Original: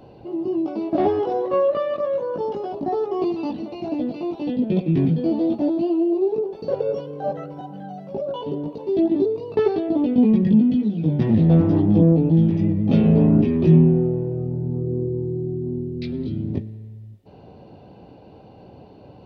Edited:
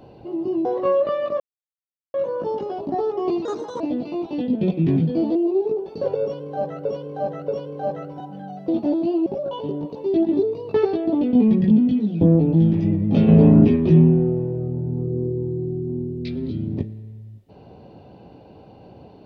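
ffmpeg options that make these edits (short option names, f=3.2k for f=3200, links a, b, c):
-filter_complex "[0:a]asplit=13[a][b][c][d][e][f][g][h][i][j][k][l][m];[a]atrim=end=0.652[n];[b]atrim=start=1.328:end=2.08,asetpts=PTS-STARTPTS,afade=t=out:st=0.748:d=0.004:c=hsin,apad=pad_dur=0.74[o];[c]atrim=start=2.08:end=3.394,asetpts=PTS-STARTPTS,afade=t=in:d=0.004:c=hsin[p];[d]atrim=start=3.39:end=3.89,asetpts=PTS-STARTPTS,asetrate=62622,aresample=44100,atrim=end_sample=15528,asetpts=PTS-STARTPTS[q];[e]atrim=start=3.886:end=5.442[r];[f]atrim=start=6.018:end=7.522[s];[g]atrim=start=6.888:end=7.522[t];[h]atrim=start=6.888:end=8.092[u];[i]atrim=start=5.438:end=6.022[v];[j]atrim=start=8.088:end=11.042[w];[k]atrim=start=11.978:end=13.052[x];[l]atrim=start=13.048:end=13.532,asetpts=PTS-STARTPTS,volume=3.5dB[y];[m]atrim=start=13.528[z];[o][p]concat=n=2:v=0:a=1[aa];[n][aa]acrossfade=d=0.004:c1=hsin:c2=hsin[ab];[ab][q]acrossfade=d=0.004:c1=hsin:c2=hsin[ac];[ac][r]acrossfade=d=0.004:c1=hsin:c2=hsin[ad];[ad][s]acrossfade=d=0.004:c1=hsin:c2=hsin[ae];[ae][t]acrossfade=d=0.004:c1=hsin:c2=hsin[af];[af][u]acrossfade=d=0.004:c1=hsin:c2=hsin[ag];[ag][v]acrossfade=d=0.004:c1=hsin:c2=hsin[ah];[ah][w]acrossfade=d=0.004:c1=hsin:c2=hsin[ai];[ai][x]acrossfade=d=0.004:c1=hsin:c2=hsin[aj];[aj][y]acrossfade=d=0.004:c1=hsin:c2=hsin[ak];[ak][z]acrossfade=d=0.004:c1=hsin:c2=hsin"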